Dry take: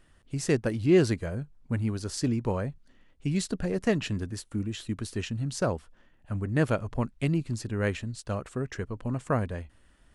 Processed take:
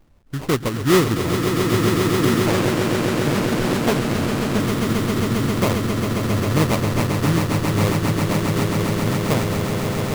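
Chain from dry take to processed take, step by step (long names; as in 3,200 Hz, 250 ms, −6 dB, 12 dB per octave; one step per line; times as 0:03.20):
flat-topped bell 3,300 Hz −13 dB
sample-rate reduction 1,600 Hz, jitter 20%
echo that builds up and dies away 134 ms, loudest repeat 8, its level −7 dB
0:02.46–0:04.60: highs frequency-modulated by the lows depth 0.86 ms
level +5 dB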